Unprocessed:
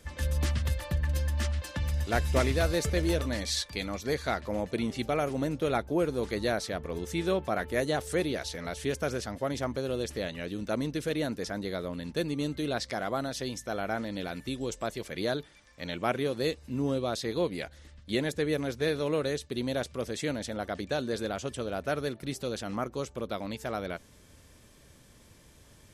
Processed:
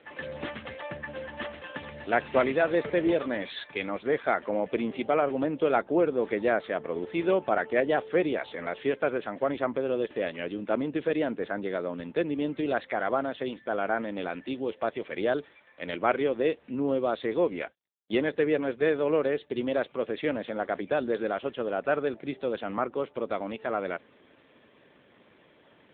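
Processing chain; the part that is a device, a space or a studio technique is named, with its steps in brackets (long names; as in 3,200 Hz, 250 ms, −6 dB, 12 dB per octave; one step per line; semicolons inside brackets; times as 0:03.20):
0:17.59–0:19.41: noise gate −41 dBFS, range −49 dB
telephone (band-pass filter 280–3,400 Hz; level +5.5 dB; AMR narrowband 7.95 kbit/s 8,000 Hz)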